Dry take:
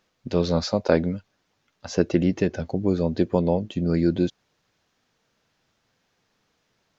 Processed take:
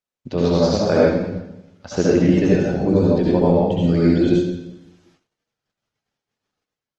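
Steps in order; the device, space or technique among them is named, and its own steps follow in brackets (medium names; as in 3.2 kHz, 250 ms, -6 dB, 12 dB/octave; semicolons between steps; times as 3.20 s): 2.09–3.80 s: treble shelf 4 kHz -4 dB; speakerphone in a meeting room (reverberation RT60 0.95 s, pre-delay 62 ms, DRR -6 dB; level rider gain up to 4 dB; gate -56 dBFS, range -27 dB; trim -1 dB; Opus 20 kbps 48 kHz)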